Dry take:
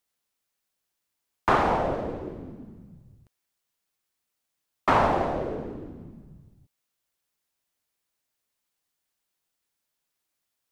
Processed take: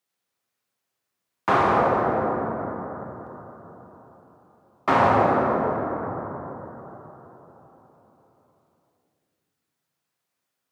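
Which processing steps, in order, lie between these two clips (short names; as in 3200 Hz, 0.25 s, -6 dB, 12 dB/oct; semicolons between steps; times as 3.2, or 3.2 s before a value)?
HPF 88 Hz 24 dB/oct; high shelf 5100 Hz -4 dB; notch 880 Hz, Q 29; plate-style reverb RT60 4.2 s, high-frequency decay 0.25×, DRR -2.5 dB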